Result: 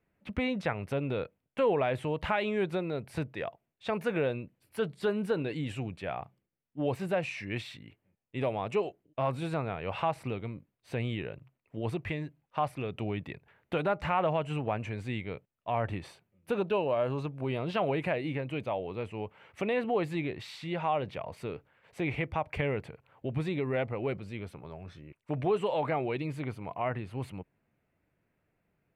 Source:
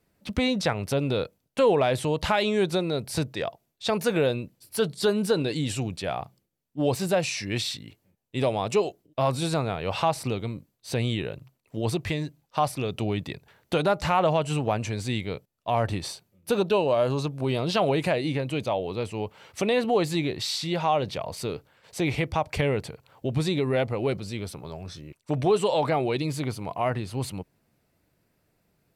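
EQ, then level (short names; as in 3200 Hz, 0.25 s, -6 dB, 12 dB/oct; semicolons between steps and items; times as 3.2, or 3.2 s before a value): resonant high shelf 3400 Hz -12 dB, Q 1.5; -6.5 dB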